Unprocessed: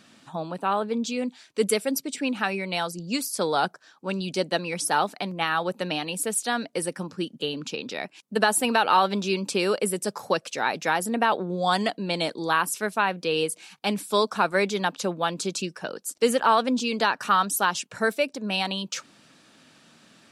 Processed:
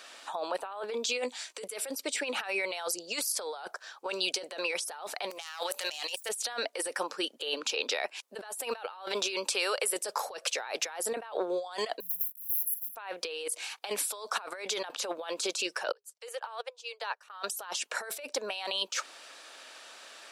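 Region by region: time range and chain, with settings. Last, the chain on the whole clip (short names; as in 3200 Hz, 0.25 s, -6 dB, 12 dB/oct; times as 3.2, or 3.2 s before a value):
1.23–1.64 bell 7700 Hz +7.5 dB 0.84 oct + doubler 16 ms -10.5 dB
5.3–6.29 self-modulated delay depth 0.1 ms + tilt +4.5 dB/oct + de-hum 144.8 Hz, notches 4
9.46–9.93 low shelf 400 Hz -11 dB + compressor 2.5:1, threshold -34 dBFS
12–12.96 block floating point 3-bit + brick-wall FIR band-stop 190–11000 Hz + low shelf 130 Hz -7.5 dB
15.92–17.3 Chebyshev high-pass 410 Hz, order 10 + upward expander 2.5:1, over -36 dBFS
whole clip: HPF 480 Hz 24 dB/oct; negative-ratio compressor -36 dBFS, ratio -1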